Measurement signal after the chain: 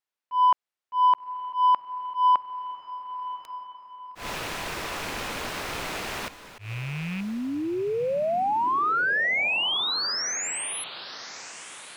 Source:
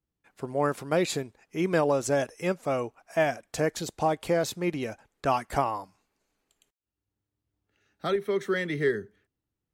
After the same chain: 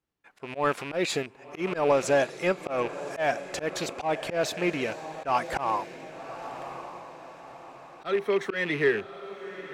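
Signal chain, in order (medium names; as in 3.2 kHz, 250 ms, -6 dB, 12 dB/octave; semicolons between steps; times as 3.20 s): rattle on loud lows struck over -40 dBFS, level -32 dBFS; overdrive pedal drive 13 dB, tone 2.5 kHz, clips at -10 dBFS; on a send: echo that smears into a reverb 1135 ms, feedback 45%, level -14 dB; on the sum: slow attack 131 ms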